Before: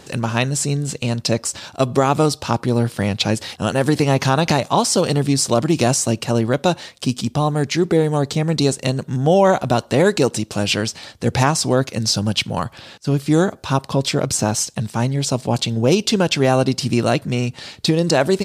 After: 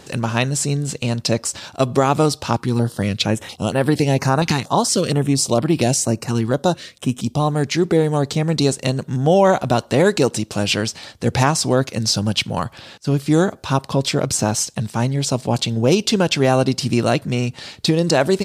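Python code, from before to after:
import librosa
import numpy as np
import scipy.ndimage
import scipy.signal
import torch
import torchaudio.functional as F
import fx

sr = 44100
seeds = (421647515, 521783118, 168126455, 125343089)

y = fx.filter_held_notch(x, sr, hz=4.3, low_hz=600.0, high_hz=6500.0, at=(2.56, 7.4))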